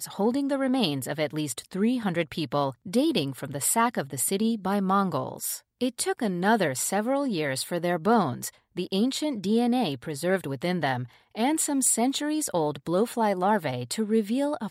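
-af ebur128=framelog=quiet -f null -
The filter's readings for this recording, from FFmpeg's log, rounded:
Integrated loudness:
  I:         -26.5 LUFS
  Threshold: -36.5 LUFS
Loudness range:
  LRA:         1.5 LU
  Threshold: -46.4 LUFS
  LRA low:   -27.1 LUFS
  LRA high:  -25.6 LUFS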